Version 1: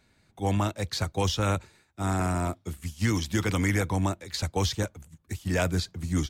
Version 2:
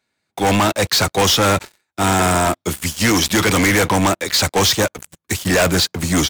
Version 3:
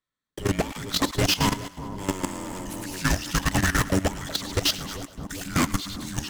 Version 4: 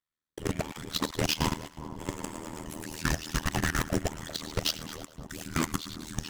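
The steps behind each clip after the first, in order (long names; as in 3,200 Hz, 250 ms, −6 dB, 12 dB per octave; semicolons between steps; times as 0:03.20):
high-pass filter 440 Hz 6 dB per octave; leveller curve on the samples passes 5; level +4.5 dB
echo with a time of its own for lows and highs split 1,400 Hz, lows 394 ms, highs 104 ms, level −8.5 dB; frequency shifter −380 Hz; output level in coarse steps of 14 dB; level −6 dB
amplitude modulation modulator 79 Hz, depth 100%; level −2 dB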